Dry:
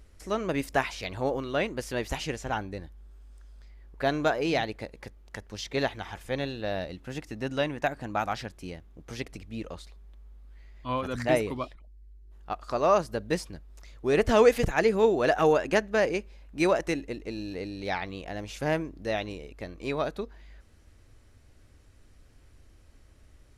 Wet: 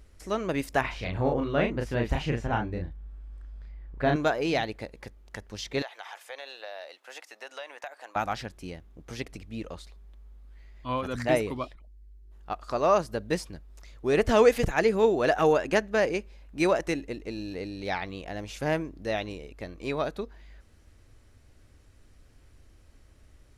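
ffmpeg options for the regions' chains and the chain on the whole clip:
-filter_complex "[0:a]asettb=1/sr,asplit=3[a][b][c];[a]atrim=end=0.814[d];[b]atrim=start=0.81:end=4.16,asetpts=PTS-STARTPTS,afade=t=in:d=0.004:c=qsin,afade=t=out:st=3.346:d=0.004:c=qsin,bass=f=250:g=7,treble=f=4k:g=-13,asplit=2[e][f];[f]adelay=34,volume=-3dB[g];[e][g]amix=inputs=2:normalize=0,atrim=end_sample=147735[h];[c]atrim=start=4.156[i];[d][h]acrossfade=d=0.004:c1=hsin:c2=qsin[j];[j][i]acrossfade=d=0.004:c1=qsin:c2=hsin,asettb=1/sr,asplit=3[k][l][m];[k]atrim=end=5.824[n];[l]atrim=start=5.82:end=8.16,asetpts=PTS-STARTPTS,afade=t=in:d=0.004:c=qsin,afade=t=out:st=2.336:d=0.004:c=qsin,highpass=f=580:w=0.5412,highpass=f=580:w=1.3066,acompressor=threshold=-36dB:ratio=4:attack=3.2:release=140:knee=1:detection=peak[o];[m]atrim=start=8.156[p];[n][o]acrossfade=d=0.004:c1=hsin:c2=qsin[q];[q][p]acrossfade=d=0.004:c1=qsin:c2=hsin"

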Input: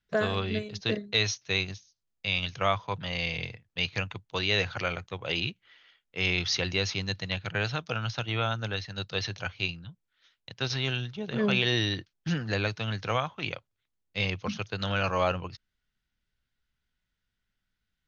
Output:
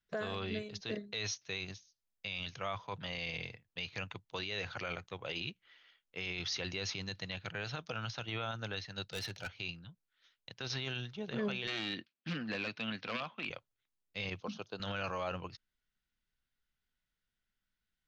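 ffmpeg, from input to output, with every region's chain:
-filter_complex "[0:a]asettb=1/sr,asplit=3[a][b][c];[a]atrim=end=9.044[d];[b]atrim=start=9.04:end=9.56,asetpts=PTS-STARTPTS,afade=t=in:d=0.004:c=qsin,afade=t=out:st=0.516:d=0.004:c=qsin,asoftclip=type=hard:threshold=-30.5dB,asuperstop=centerf=1100:order=4:qfactor=5.5[e];[c]atrim=start=9.556[f];[d][e]acrossfade=d=0.004:c1=hsin:c2=qsin[g];[g][f]acrossfade=d=0.004:c1=qsin:c2=hsin,asettb=1/sr,asplit=3[h][i][j];[h]atrim=end=11.674[k];[i]atrim=start=11.67:end=13.5,asetpts=PTS-STARTPTS,afade=t=in:d=0.004:c=qsin,afade=t=out:st=1.826:d=0.004:c=qsin,aeval=exprs='0.0708*(abs(mod(val(0)/0.0708+3,4)-2)-1)':c=same,highpass=190,equalizer=f=230:t=q:w=4:g=9,equalizer=f=410:t=q:w=4:g=-4,equalizer=f=860:t=q:w=4:g=-3,equalizer=f=2.5k:t=q:w=4:g=6,lowpass=f=4.7k:w=0.5412,lowpass=f=4.7k:w=1.3066[l];[j]atrim=start=13.496[m];[k][l]acrossfade=d=0.004:c1=hsin:c2=qsin[n];[n][m]acrossfade=d=0.004:c1=qsin:c2=hsin,asettb=1/sr,asplit=3[o][p][q];[o]atrim=end=14.404[r];[p]atrim=start=14.4:end=14.8,asetpts=PTS-STARTPTS,afade=t=in:d=0.004:c=qsin,afade=t=out:st=0.396:d=0.004:c=qsin,highpass=190,lowpass=4.8k,equalizer=f=2k:w=1.7:g=-14[s];[q]atrim=start=14.796[t];[r][s]acrossfade=d=0.004:c1=hsin:c2=qsin[u];[u][t]acrossfade=d=0.004:c1=qsin:c2=hsin,equalizer=f=84:t=o:w=1.8:g=-5,alimiter=limit=-23dB:level=0:latency=1:release=26,volume=-5dB"

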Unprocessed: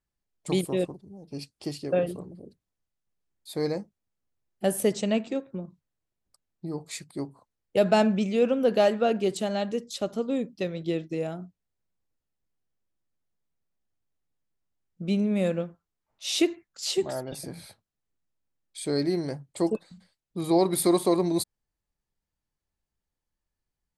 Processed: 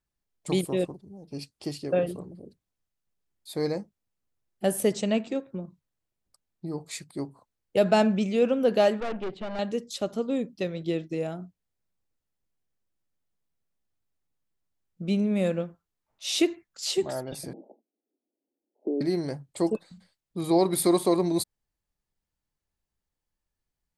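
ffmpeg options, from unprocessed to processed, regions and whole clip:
-filter_complex "[0:a]asettb=1/sr,asplit=3[a][b][c];[a]atrim=end=9.004[d];[b]atrim=start=9:end=9.59,asetpts=PTS-STARTPTS,afade=t=in:d=0.004:c=qsin,afade=t=out:st=0.586:d=0.004:c=qsin,lowpass=f=3.3k:w=0.5412,lowpass=f=3.3k:w=1.3066,aeval=exprs='(tanh(28.2*val(0)+0.75)-tanh(0.75))/28.2':c=same[e];[c]atrim=start=9.586[f];[d][e]acrossfade=d=0.004:c1=hsin:c2=qsin[g];[g][f]acrossfade=d=0.004:c1=qsin:c2=hsin,asettb=1/sr,asplit=3[h][i][j];[h]atrim=end=17.534[k];[i]atrim=start=17.53:end=19.01,asetpts=PTS-STARTPTS,afade=t=in:d=0.004:c=qsin,afade=t=out:st=1.476:d=0.004:c=qsin,equalizer=f=330:w=0.92:g=14,acompressor=threshold=-24dB:ratio=16:attack=3.2:release=140:knee=1:detection=peak,asuperpass=centerf=430:order=12:qfactor=0.71[l];[j]atrim=start=19.006[m];[k][l]acrossfade=d=0.004:c1=hsin:c2=qsin[n];[n][m]acrossfade=d=0.004:c1=qsin:c2=hsin"

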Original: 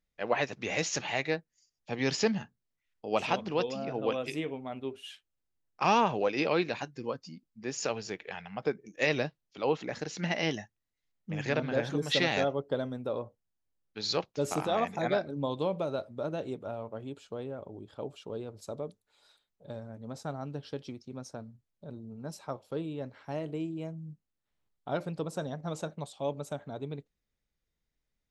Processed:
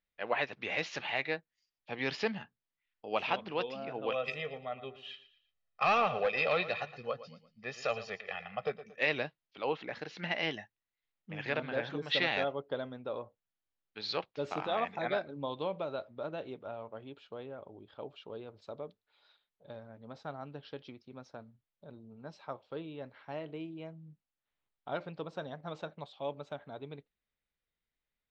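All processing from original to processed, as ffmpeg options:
-filter_complex "[0:a]asettb=1/sr,asplit=3[a][b][c];[a]atrim=end=4.114[d];[b]atrim=start=4.11:end=8.99,asetpts=PTS-STARTPTS,afade=t=in:d=0.004:c=qsin,afade=t=out:st=4.876:d=0.004:c=qsin,aecho=1:1:1.6:0.93,atrim=end_sample=215208,asoftclip=type=hard:threshold=-20dB,aecho=1:1:115|230|345:0.188|0.0697|0.0258,atrim=end_sample=215208[e];[c]atrim=start=8.986[f];[d][e]acrossfade=d=0.004:c1=hsin:c2=qsin[g];[g][f]acrossfade=d=0.004:c1=qsin:c2=hsin,lowpass=f=3.9k:w=0.5412,lowpass=f=3.9k:w=1.3066,lowshelf=f=500:g=-10"

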